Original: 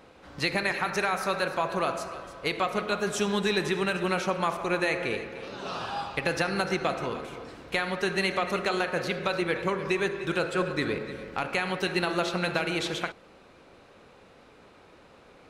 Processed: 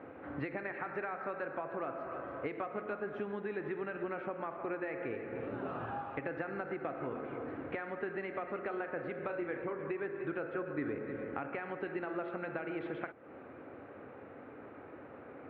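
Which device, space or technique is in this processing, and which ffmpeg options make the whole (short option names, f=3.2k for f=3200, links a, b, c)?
bass amplifier: -filter_complex "[0:a]lowpass=f=3.2k:p=1,asettb=1/sr,asplit=3[a][b][c];[a]atrim=end=5.324[d];[b]atrim=start=5.32:end=6.01,asetpts=PTS-STARTPTS,afade=t=in:d=0.004:c=qsin,afade=t=out:st=0.686:d=0.004:c=qsin,lowshelf=f=180:g=11[e];[c]atrim=start=6.006[f];[d][e]acrossfade=d=0.004:c1=hsin:c2=qsin[g];[g][f]acrossfade=d=0.004:c1=qsin:c2=hsin,asettb=1/sr,asplit=3[h][i][j];[h]atrim=end=9.254[k];[i]atrim=start=9.25:end=9.73,asetpts=PTS-STARTPTS,afade=t=in:d=0.004:c=qsin,afade=t=out:st=0.476:d=0.004:c=qsin,asplit=2[l][m];[m]adelay=34,volume=-7dB[n];[l][n]amix=inputs=2:normalize=0,atrim=end_sample=21168[o];[j]atrim=start=9.726[p];[k][o]acrossfade=d=0.004:c1=hsin:c2=qsin[q];[q][p]acrossfade=d=0.004:c1=qsin:c2=hsin,acompressor=threshold=-42dB:ratio=4,highpass=f=87:w=0.5412,highpass=f=87:w=1.3066,equalizer=f=180:t=q:w=4:g=-9,equalizer=f=280:t=q:w=4:g=6,equalizer=f=1k:t=q:w=4:g=-5,lowpass=f=2k:w=0.5412,lowpass=f=2k:w=1.3066,volume=4.5dB"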